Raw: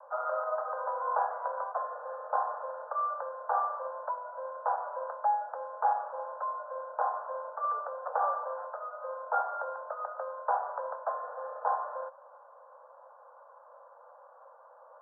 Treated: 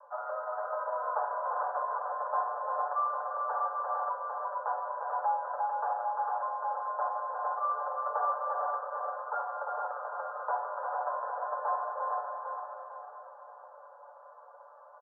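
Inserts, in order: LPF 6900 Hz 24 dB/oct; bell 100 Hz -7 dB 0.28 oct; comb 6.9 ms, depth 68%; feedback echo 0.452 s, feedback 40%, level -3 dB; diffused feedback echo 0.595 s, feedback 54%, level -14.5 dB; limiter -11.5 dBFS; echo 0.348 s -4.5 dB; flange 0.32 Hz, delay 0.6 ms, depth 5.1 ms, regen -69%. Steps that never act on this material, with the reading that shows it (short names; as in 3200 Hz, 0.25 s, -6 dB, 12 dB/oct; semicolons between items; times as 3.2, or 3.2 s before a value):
LPF 6900 Hz: input band ends at 1600 Hz; bell 100 Hz: input band starts at 430 Hz; limiter -11.5 dBFS: input peak -14.5 dBFS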